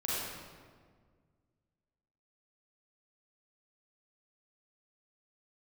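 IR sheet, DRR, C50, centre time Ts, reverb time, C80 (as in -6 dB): -8.0 dB, -4.5 dB, 129 ms, 1.8 s, -1.5 dB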